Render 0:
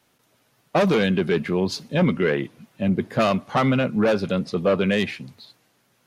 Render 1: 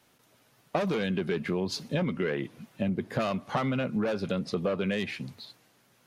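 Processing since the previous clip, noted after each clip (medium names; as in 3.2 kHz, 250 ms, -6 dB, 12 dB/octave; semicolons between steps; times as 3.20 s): compression, threshold -26 dBFS, peak gain reduction 11 dB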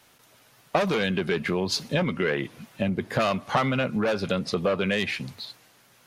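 peaking EQ 230 Hz -6 dB 2.6 oct; trim +8 dB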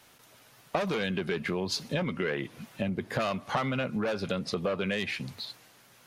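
compression 1.5:1, threshold -36 dBFS, peak gain reduction 6.5 dB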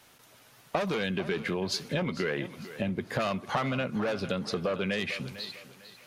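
thinning echo 450 ms, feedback 34%, high-pass 170 Hz, level -14 dB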